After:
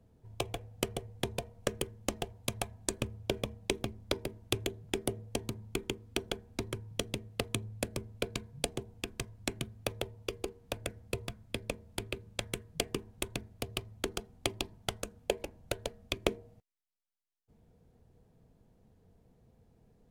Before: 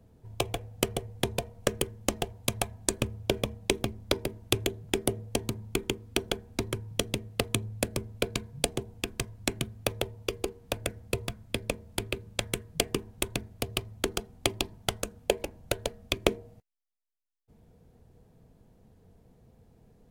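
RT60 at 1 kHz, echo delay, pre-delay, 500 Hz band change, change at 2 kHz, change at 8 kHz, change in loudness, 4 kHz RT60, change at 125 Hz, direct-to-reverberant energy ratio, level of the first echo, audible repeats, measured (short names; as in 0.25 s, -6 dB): none, none, none, -5.5 dB, -5.5 dB, -6.5 dB, -6.0 dB, none, -5.5 dB, none, none, none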